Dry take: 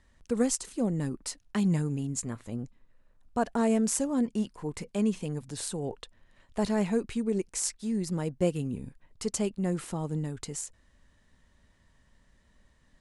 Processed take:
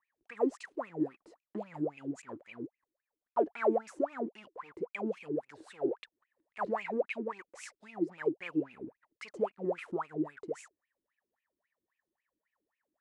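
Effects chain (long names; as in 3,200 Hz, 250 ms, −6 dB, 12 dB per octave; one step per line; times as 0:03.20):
leveller curve on the samples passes 3
LFO wah 3.7 Hz 310–2,600 Hz, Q 18
level +6 dB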